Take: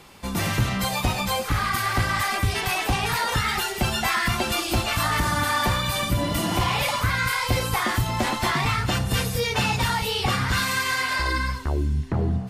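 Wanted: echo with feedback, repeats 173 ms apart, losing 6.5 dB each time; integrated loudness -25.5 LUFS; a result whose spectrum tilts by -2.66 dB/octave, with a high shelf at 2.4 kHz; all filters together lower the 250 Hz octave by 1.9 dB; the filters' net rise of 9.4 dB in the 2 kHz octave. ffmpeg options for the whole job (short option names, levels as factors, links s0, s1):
-af "equalizer=f=250:t=o:g=-3,equalizer=f=2000:t=o:g=7.5,highshelf=f=2400:g=8.5,aecho=1:1:173|346|519|692|865|1038:0.473|0.222|0.105|0.0491|0.0231|0.0109,volume=0.335"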